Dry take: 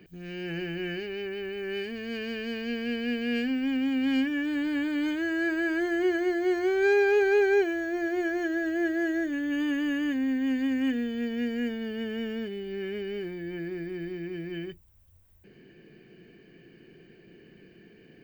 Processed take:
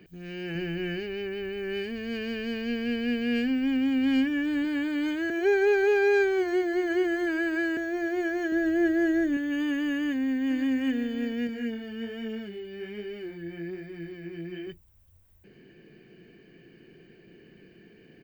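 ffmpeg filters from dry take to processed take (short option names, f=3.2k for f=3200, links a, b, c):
-filter_complex "[0:a]asettb=1/sr,asplit=3[a][b][c];[a]atrim=end=0.554[d];[b]atrim=start=0.55:end=4.65,asetpts=PTS-STARTPTS,afade=t=in:d=0.004:c=qsin,afade=t=out:st=4.096:d=0.004:c=qsin,lowshelf=f=160:g=7.5[e];[c]atrim=start=4.646[f];[d][e]acrossfade=d=0.004:c1=hsin:c2=qsin[g];[g][f]acrossfade=d=0.004:c1=qsin:c2=hsin,asettb=1/sr,asplit=3[h][i][j];[h]atrim=end=8.524[k];[i]atrim=start=8.52:end=9.37,asetpts=PTS-STARTPTS,afade=t=in:d=0.004:c=qsin,afade=t=out:st=0.846:d=0.004:c=qsin,lowshelf=f=290:g=9.5[l];[j]atrim=start=9.366[m];[k][l]acrossfade=d=0.004:c1=hsin:c2=qsin[n];[n][m]acrossfade=d=0.004:c1=qsin:c2=hsin,asplit=2[o][p];[p]afade=t=in:st=9.98:d=0.01,afade=t=out:st=10.8:d=0.01,aecho=0:1:520|1040:0.266073|0.0266073[q];[o][q]amix=inputs=2:normalize=0,asettb=1/sr,asplit=3[r][s][t];[r]atrim=end=11.474[u];[s]atrim=start=11.47:end=14.67,asetpts=PTS-STARTPTS,afade=t=in:d=0.004:c=qsin,afade=t=out:st=3.196:d=0.004:c=qsin,flanger=delay=18:depth=6:speed=1.2[v];[t]atrim=start=14.666[w];[u][v]acrossfade=d=0.004:c1=hsin:c2=qsin[x];[x][w]acrossfade=d=0.004:c1=qsin:c2=hsin,asplit=3[y][z][aa];[y]atrim=end=5.302[ab];[z]atrim=start=5.298:end=7.772,asetpts=PTS-STARTPTS,areverse[ac];[aa]atrim=start=7.768[ad];[ab][ac]acrossfade=d=0.004:c1=hsin:c2=hsin[ae];[ae][ad]acrossfade=d=0.004:c1=hsin:c2=hsin"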